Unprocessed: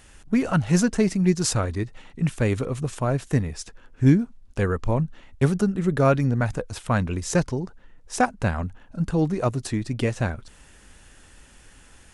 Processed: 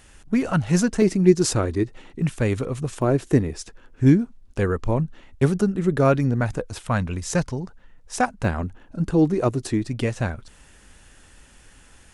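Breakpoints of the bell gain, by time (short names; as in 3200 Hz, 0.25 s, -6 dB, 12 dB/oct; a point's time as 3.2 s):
bell 350 Hz 0.81 oct
+0.5 dB
from 1.02 s +9.5 dB
from 2.22 s +1 dB
from 3.02 s +12 dB
from 3.58 s +3.5 dB
from 6.84 s -4 dB
from 8.45 s +7.5 dB
from 9.85 s -0.5 dB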